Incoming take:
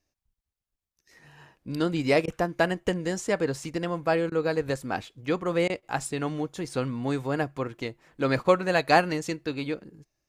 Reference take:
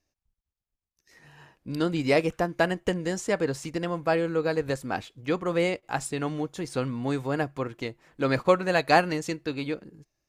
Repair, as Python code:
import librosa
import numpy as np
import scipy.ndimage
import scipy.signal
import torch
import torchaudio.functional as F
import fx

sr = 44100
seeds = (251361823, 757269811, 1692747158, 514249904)

y = fx.fix_interpolate(x, sr, at_s=(2.26, 4.3, 5.68), length_ms=16.0)